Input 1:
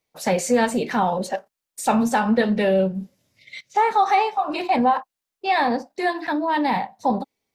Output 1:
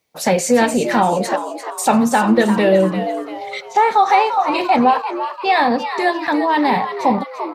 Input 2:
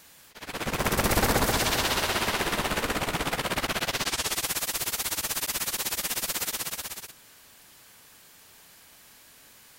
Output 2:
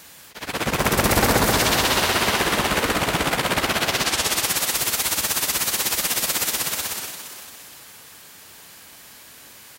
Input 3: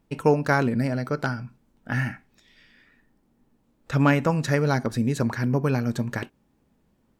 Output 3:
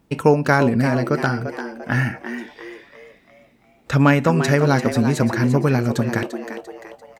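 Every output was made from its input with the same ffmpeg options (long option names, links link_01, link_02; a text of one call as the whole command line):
ffmpeg -i in.wav -filter_complex "[0:a]highpass=47,asplit=2[link_01][link_02];[link_02]acompressor=threshold=-29dB:ratio=6,volume=-3dB[link_03];[link_01][link_03]amix=inputs=2:normalize=0,asplit=6[link_04][link_05][link_06][link_07][link_08][link_09];[link_05]adelay=344,afreqshift=110,volume=-10dB[link_10];[link_06]adelay=688,afreqshift=220,volume=-17.3dB[link_11];[link_07]adelay=1032,afreqshift=330,volume=-24.7dB[link_12];[link_08]adelay=1376,afreqshift=440,volume=-32dB[link_13];[link_09]adelay=1720,afreqshift=550,volume=-39.3dB[link_14];[link_04][link_10][link_11][link_12][link_13][link_14]amix=inputs=6:normalize=0,volume=3.5dB" out.wav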